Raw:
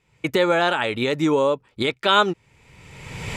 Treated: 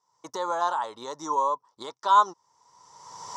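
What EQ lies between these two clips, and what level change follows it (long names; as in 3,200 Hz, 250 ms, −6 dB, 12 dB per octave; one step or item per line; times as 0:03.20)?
pair of resonant band-passes 2,400 Hz, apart 2.5 octaves
parametric band 1,500 Hz −3 dB 0.33 octaves
+7.0 dB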